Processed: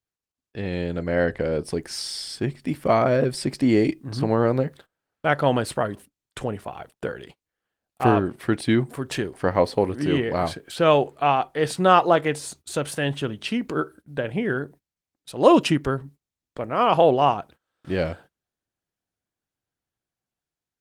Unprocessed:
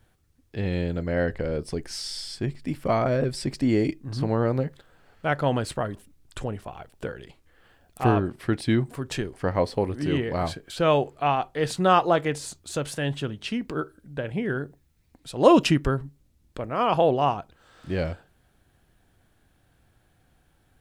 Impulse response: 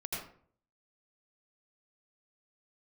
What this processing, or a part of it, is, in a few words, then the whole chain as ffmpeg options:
video call: -af "highpass=frequency=160:poles=1,dynaudnorm=framelen=250:gausssize=7:maxgain=5dB,agate=range=-27dB:threshold=-44dB:ratio=16:detection=peak" -ar 48000 -c:a libopus -b:a 32k

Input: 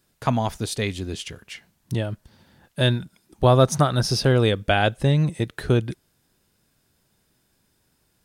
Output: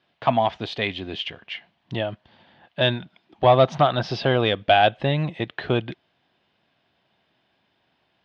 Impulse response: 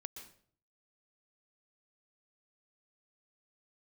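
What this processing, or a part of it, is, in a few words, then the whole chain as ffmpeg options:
overdrive pedal into a guitar cabinet: -filter_complex "[0:a]asplit=2[link_01][link_02];[link_02]highpass=frequency=720:poles=1,volume=13dB,asoftclip=type=tanh:threshold=-3.5dB[link_03];[link_01][link_03]amix=inputs=2:normalize=0,lowpass=frequency=3200:poles=1,volume=-6dB,highpass=81,equalizer=frequency=450:width_type=q:width=4:gain=-4,equalizer=frequency=700:width_type=q:width=4:gain=6,equalizer=frequency=1400:width_type=q:width=4:gain=-5,equalizer=frequency=3100:width_type=q:width=4:gain=5,lowpass=frequency=3800:width=0.5412,lowpass=frequency=3800:width=1.3066,volume=-2dB"

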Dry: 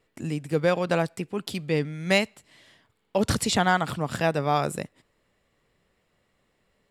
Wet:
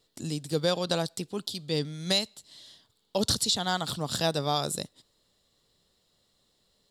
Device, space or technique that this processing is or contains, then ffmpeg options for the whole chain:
over-bright horn tweeter: -af "highshelf=frequency=3000:width_type=q:width=3:gain=9,alimiter=limit=-10.5dB:level=0:latency=1:release=337,volume=-3.5dB"

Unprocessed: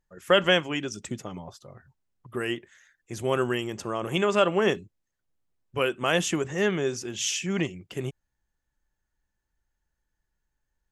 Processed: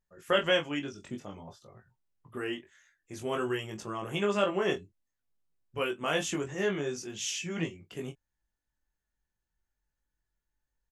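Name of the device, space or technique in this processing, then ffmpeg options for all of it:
double-tracked vocal: -filter_complex "[0:a]asplit=2[link_01][link_02];[link_02]adelay=24,volume=-10.5dB[link_03];[link_01][link_03]amix=inputs=2:normalize=0,flanger=delay=18.5:depth=2.6:speed=0.53,asettb=1/sr,asplit=3[link_04][link_05][link_06];[link_04]atrim=end=0.794[link_07];[link_05]atrim=start=0.79:end=2.53,asetpts=PTS-STARTPTS,afade=type=in:duration=0.004:curve=qsin,afade=type=out:start_time=1.736:duration=0.004:curve=qsin,acrossover=split=3900[link_08][link_09];[link_09]acompressor=threshold=-54dB:ratio=4:attack=1:release=60[link_10];[link_08][link_10]amix=inputs=2:normalize=0[link_11];[link_06]atrim=start=2.526[link_12];[link_07][link_11]acrossfade=duration=0.004:curve1=hsin:curve2=qsin[link_13];[link_13][link_12]acrossfade=duration=0.004:curve1=qsin:curve2=hsin,volume=-3dB"

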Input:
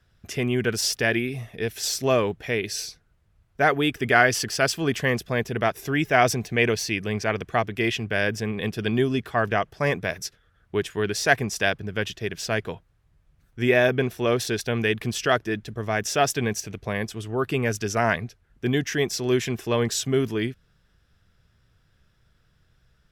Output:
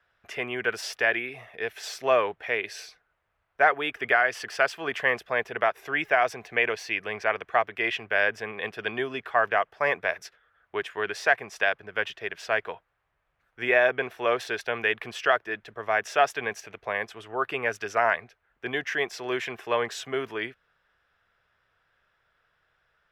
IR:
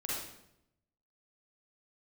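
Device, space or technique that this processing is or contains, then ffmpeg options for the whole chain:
DJ mixer with the lows and highs turned down: -filter_complex "[0:a]acrossover=split=520 2800:gain=0.0708 1 0.126[link_01][link_02][link_03];[link_01][link_02][link_03]amix=inputs=3:normalize=0,alimiter=limit=-12dB:level=0:latency=1:release=336,volume=3.5dB"

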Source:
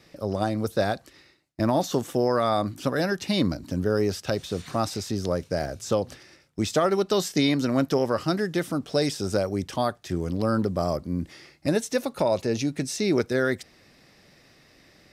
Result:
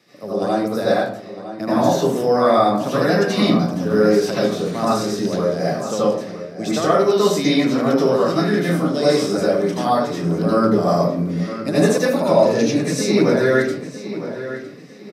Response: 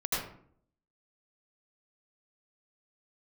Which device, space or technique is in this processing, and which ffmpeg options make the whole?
far laptop microphone: -filter_complex "[1:a]atrim=start_sample=2205[link_01];[0:a][link_01]afir=irnorm=-1:irlink=0,highpass=frequency=150:width=0.5412,highpass=frequency=150:width=1.3066,dynaudnorm=framelen=620:gausssize=9:maxgain=11.5dB,asettb=1/sr,asplit=3[link_02][link_03][link_04];[link_02]atrim=end=8.444[link_05];[link_03]atrim=start=8.44:end=9.36,asetpts=PTS-STARTPTS,afade=type=in:duration=0.004:curve=qsin,afade=type=out:start_time=0.916:duration=0.004:curve=qsin,asplit=2[link_06][link_07];[link_07]adelay=29,volume=-7dB[link_08];[link_06][link_08]amix=inputs=2:normalize=0,atrim=end_sample=40572[link_09];[link_04]atrim=start=9.356[link_10];[link_05][link_09]acrossfade=duration=0.004:curve1=hsin:curve2=qsin[link_11];[link_11][link_10]acrossfade=duration=0.004:curve1=qsin:curve2=hsin,asplit=2[link_12][link_13];[link_13]adelay=957,lowpass=frequency=4100:poles=1,volume=-12dB,asplit=2[link_14][link_15];[link_15]adelay=957,lowpass=frequency=4100:poles=1,volume=0.33,asplit=2[link_16][link_17];[link_17]adelay=957,lowpass=frequency=4100:poles=1,volume=0.33[link_18];[link_12][link_14][link_16][link_18]amix=inputs=4:normalize=0,volume=-1dB"

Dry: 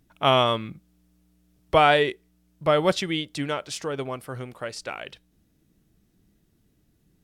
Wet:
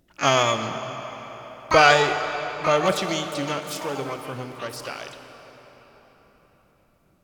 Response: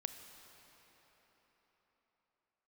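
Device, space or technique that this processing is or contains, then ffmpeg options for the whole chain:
shimmer-style reverb: -filter_complex "[0:a]asettb=1/sr,asplit=3[link_01][link_02][link_03];[link_01]atrim=end=0.634[link_04];[link_02]atrim=start=0.63:end=1.94,asetpts=PTS-STARTPTS,afade=type=in:duration=0.004:curve=qsin,afade=type=out:start_time=1.306:duration=0.004:curve=qsin,equalizer=frequency=500:width_type=o:width=1:gain=3,equalizer=frequency=2000:width_type=o:width=1:gain=7,equalizer=frequency=4000:width_type=o:width=1:gain=-4,equalizer=frequency=8000:width_type=o:width=1:gain=6[link_05];[link_03]atrim=start=1.936[link_06];[link_04][link_05]acrossfade=duration=0.004:curve1=hsin:curve2=qsin[link_07];[link_07][link_06]acrossfade=duration=0.004:curve1=qsin:curve2=hsin,asplit=2[link_08][link_09];[link_09]asetrate=88200,aresample=44100,atempo=0.5,volume=-5dB[link_10];[link_08][link_10]amix=inputs=2:normalize=0[link_11];[1:a]atrim=start_sample=2205[link_12];[link_11][link_12]afir=irnorm=-1:irlink=0,volume=1.5dB"

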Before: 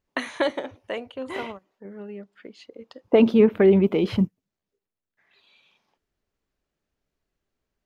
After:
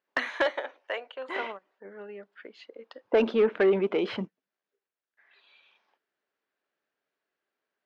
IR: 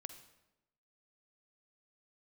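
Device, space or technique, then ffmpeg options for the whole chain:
intercom: -filter_complex "[0:a]asettb=1/sr,asplit=3[link_01][link_02][link_03];[link_01]atrim=end=0.464[link_04];[link_02]atrim=start=0.46:end=1.29,asetpts=PTS-STARTPTS,afade=type=in:duration=0.004:curve=qsin,afade=type=out:start_time=0.826:duration=0.004:curve=qsin,highpass=480[link_05];[link_03]atrim=start=1.286[link_06];[link_04][link_05]acrossfade=duration=0.004:curve1=hsin:curve2=qsin[link_07];[link_07][link_06]acrossfade=duration=0.004:curve1=qsin:curve2=hsin,highpass=420,lowpass=3900,equalizer=frequency=1600:width_type=o:width=0.47:gain=5.5,asoftclip=type=tanh:threshold=-14.5dB"

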